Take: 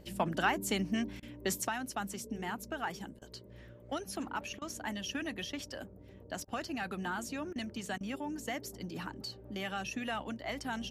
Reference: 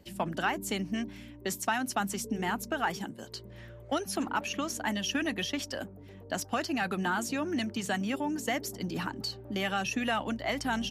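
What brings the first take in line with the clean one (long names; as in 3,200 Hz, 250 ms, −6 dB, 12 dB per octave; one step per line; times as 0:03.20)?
hum removal 61.2 Hz, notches 10
repair the gap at 0:01.20/0:03.19/0:04.59/0:06.45/0:07.53/0:07.98, 25 ms
level 0 dB, from 0:01.68 +7 dB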